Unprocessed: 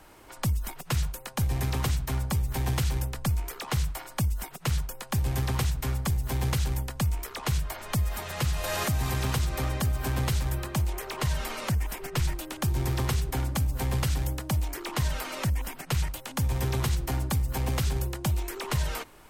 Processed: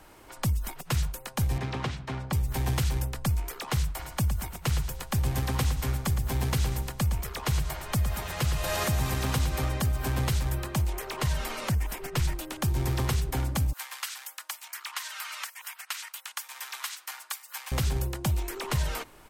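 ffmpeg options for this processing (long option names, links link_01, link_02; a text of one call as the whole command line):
ffmpeg -i in.wav -filter_complex "[0:a]asettb=1/sr,asplit=3[link_01][link_02][link_03];[link_01]atrim=end=1.584[link_04];[link_02]atrim=start=1.58:end=2.33,asetpts=PTS-STARTPTS,afade=type=in:duration=0.004:curve=qsin,afade=type=out:start_time=0.746:duration=0.004:curve=qsin,highpass=130,lowpass=3800[link_05];[link_03]atrim=start=2.326[link_06];[link_04][link_05]acrossfade=duration=0.004:curve1=hsin:curve2=qsin[link_07];[link_07][link_06]acrossfade=duration=0.004:curve1=qsin:curve2=hsin,asplit=3[link_08][link_09][link_10];[link_08]afade=type=out:start_time=3.98:duration=0.02[link_11];[link_09]aecho=1:1:113|226|339|452|565:0.316|0.142|0.064|0.0288|0.013,afade=type=in:start_time=3.98:duration=0.02,afade=type=out:start_time=9.65:duration=0.02[link_12];[link_10]afade=type=in:start_time=9.65:duration=0.02[link_13];[link_11][link_12][link_13]amix=inputs=3:normalize=0,asettb=1/sr,asplit=3[link_14][link_15][link_16];[link_14]atrim=end=13.734[link_17];[link_15]atrim=start=13.73:end=17.72,asetpts=PTS-STARTPTS,afade=type=in:duration=0.004:curve=qsin,afade=type=out:start_time=3.986:duration=0.004:curve=qsin,highpass=frequency=1100:width=0.5412,highpass=frequency=1100:width=1.3066[link_18];[link_16]atrim=start=17.716[link_19];[link_17][link_18]acrossfade=duration=0.004:curve1=hsin:curve2=qsin[link_20];[link_20][link_19]acrossfade=duration=0.004:curve1=qsin:curve2=hsin" out.wav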